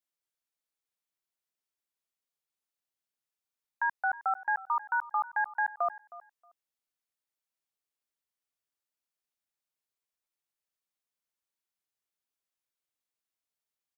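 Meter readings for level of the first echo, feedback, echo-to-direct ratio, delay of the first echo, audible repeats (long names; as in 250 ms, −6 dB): −18.0 dB, 17%, −18.0 dB, 315 ms, 2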